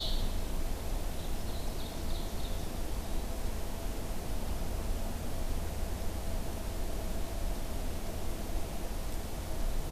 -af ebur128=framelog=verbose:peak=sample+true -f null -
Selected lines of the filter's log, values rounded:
Integrated loudness:
  I:         -39.5 LUFS
  Threshold: -49.5 LUFS
Loudness range:
  LRA:         0.6 LU
  Threshold: -59.5 LUFS
  LRA low:   -39.8 LUFS
  LRA high:  -39.1 LUFS
Sample peak:
  Peak:      -20.9 dBFS
True peak:
  Peak:      -20.9 dBFS